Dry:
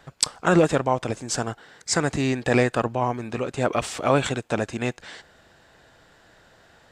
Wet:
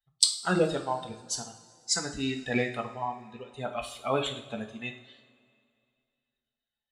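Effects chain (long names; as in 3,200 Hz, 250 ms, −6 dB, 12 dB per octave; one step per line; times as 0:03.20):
spectral dynamics exaggerated over time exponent 2
graphic EQ with 15 bands 100 Hz −7 dB, 4,000 Hz +11 dB, 10,000 Hz +7 dB
coupled-rooms reverb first 0.5 s, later 2.4 s, from −18 dB, DRR 3.5 dB
level −5.5 dB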